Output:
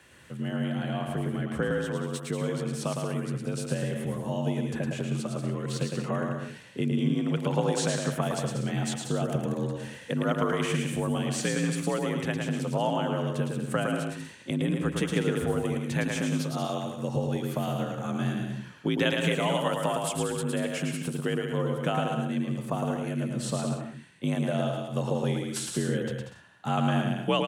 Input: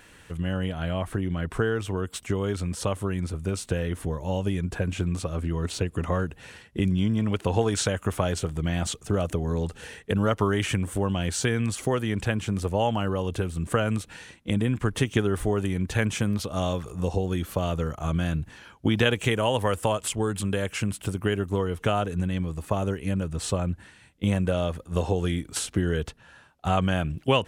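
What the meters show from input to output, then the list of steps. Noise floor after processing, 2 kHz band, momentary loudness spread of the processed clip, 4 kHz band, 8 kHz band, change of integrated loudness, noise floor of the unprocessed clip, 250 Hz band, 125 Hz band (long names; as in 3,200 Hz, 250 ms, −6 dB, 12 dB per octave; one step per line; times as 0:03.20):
−47 dBFS, −2.0 dB, 6 LU, −2.5 dB, −2.5 dB, −2.5 dB, −53 dBFS, −1.0 dB, −3.0 dB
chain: frequency shifter +50 Hz
bouncing-ball delay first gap 110 ms, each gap 0.7×, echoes 5
level −4.5 dB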